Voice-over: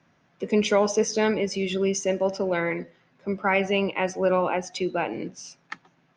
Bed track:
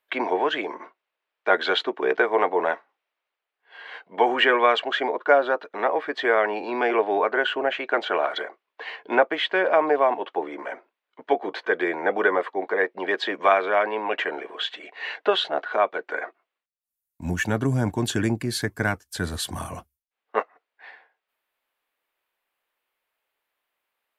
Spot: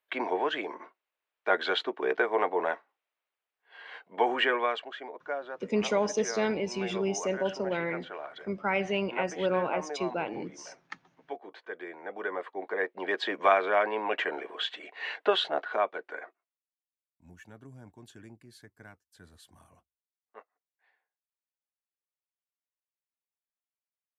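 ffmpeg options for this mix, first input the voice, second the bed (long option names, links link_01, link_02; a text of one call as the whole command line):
ffmpeg -i stem1.wav -i stem2.wav -filter_complex "[0:a]adelay=5200,volume=-6dB[link_01];[1:a]volume=7dB,afade=type=out:start_time=4.35:duration=0.6:silence=0.281838,afade=type=in:start_time=12.08:duration=1.32:silence=0.223872,afade=type=out:start_time=15.52:duration=1.09:silence=0.0749894[link_02];[link_01][link_02]amix=inputs=2:normalize=0" out.wav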